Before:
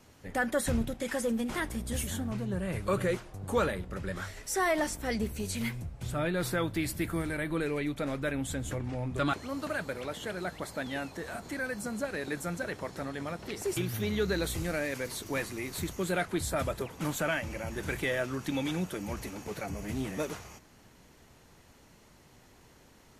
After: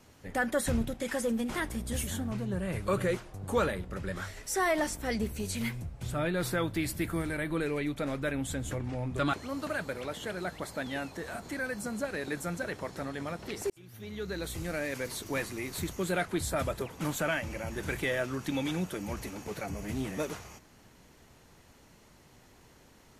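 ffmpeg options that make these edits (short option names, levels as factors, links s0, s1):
-filter_complex "[0:a]asplit=2[s0][s1];[s0]atrim=end=13.7,asetpts=PTS-STARTPTS,afade=t=out:st=13.696:d=0.004:c=hsin[s2];[s1]atrim=start=13.7,asetpts=PTS-STARTPTS,afade=t=in:d=1.32[s3];[s2][s3]concat=n=2:v=0:a=1"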